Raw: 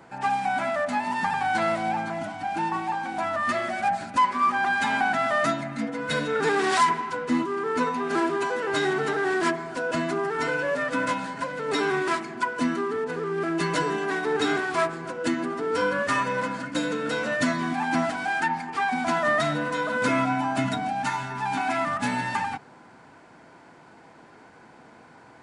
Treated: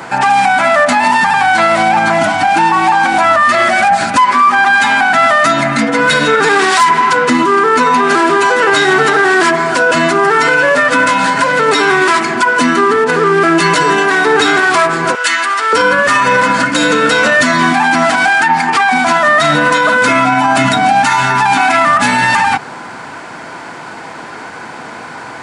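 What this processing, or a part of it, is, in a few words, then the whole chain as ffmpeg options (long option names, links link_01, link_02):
mastering chain: -filter_complex "[0:a]asettb=1/sr,asplit=3[link_01][link_02][link_03];[link_01]atrim=end=15.154[link_04];[link_02]atrim=start=15.15:end=15.73,asetpts=PTS-STARTPTS,afade=type=in:duration=0.004:curve=qsin,afade=type=out:start_time=0.576:duration=0.004:curve=qsin,highpass=1300[link_05];[link_03]atrim=start=15.726[link_06];[link_04][link_05]acrossfade=duration=0.004:curve1=hsin:curve2=qsin[link_07];[link_07][link_06]acrossfade=duration=0.004:curve1=qsin:curve2=hsin,highpass=58,equalizer=frequency=1200:width_type=o:width=0.72:gain=2,acompressor=threshold=-31dB:ratio=1.5,tiltshelf=frequency=780:gain=-4,asoftclip=type=hard:threshold=-16dB,alimiter=level_in=23dB:limit=-1dB:release=50:level=0:latency=1,volume=-1dB"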